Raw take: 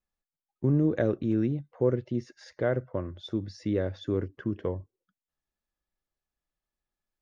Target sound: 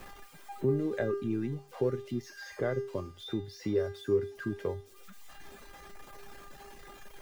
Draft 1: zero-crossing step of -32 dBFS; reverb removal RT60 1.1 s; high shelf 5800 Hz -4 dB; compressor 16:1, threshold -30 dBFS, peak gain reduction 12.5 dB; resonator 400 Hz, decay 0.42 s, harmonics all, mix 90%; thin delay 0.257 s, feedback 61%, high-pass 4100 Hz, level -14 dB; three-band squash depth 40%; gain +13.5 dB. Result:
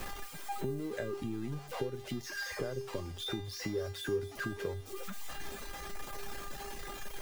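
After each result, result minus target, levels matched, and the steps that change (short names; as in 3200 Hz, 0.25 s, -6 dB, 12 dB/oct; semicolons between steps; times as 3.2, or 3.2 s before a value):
compressor: peak gain reduction +12.5 dB; zero-crossing step: distortion +10 dB
remove: compressor 16:1, threshold -30 dBFS, peak gain reduction 12.5 dB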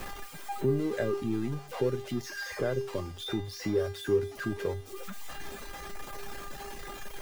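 zero-crossing step: distortion +10 dB
change: zero-crossing step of -43.5 dBFS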